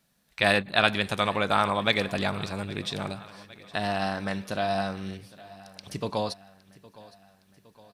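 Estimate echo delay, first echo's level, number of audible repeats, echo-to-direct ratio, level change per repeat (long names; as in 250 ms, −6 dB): 813 ms, −20.5 dB, 3, −19.0 dB, −5.0 dB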